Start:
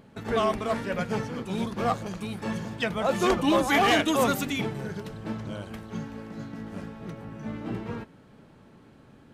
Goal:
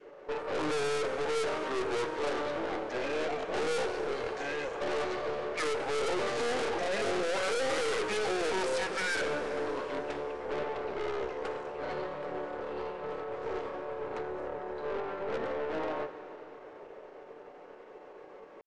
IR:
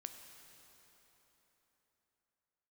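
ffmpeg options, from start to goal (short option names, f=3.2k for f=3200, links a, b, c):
-filter_complex "[0:a]lowpass=2.4k,aemphasis=mode=production:type=riaa,bandreject=f=1.5k:w=15,adynamicequalizer=threshold=0.0126:dfrequency=1200:dqfactor=1.2:tfrequency=1200:tqfactor=1.2:attack=5:release=100:ratio=0.375:range=2:mode=cutabove:tftype=bell,alimiter=limit=-22dB:level=0:latency=1:release=13,asetrate=58866,aresample=44100,atempo=0.749154,highpass=f=900:t=q:w=4.9,aeval=exprs='(tanh(89.1*val(0)+0.55)-tanh(0.55))/89.1':c=same,crystalizer=i=0.5:c=0,asetrate=22050,aresample=44100,asplit=2[a][b];[1:a]atrim=start_sample=2205,lowshelf=f=180:g=-6,highshelf=f=11k:g=-8.5[c];[b][c]afir=irnorm=-1:irlink=0,volume=10dB[d];[a][d]amix=inputs=2:normalize=0"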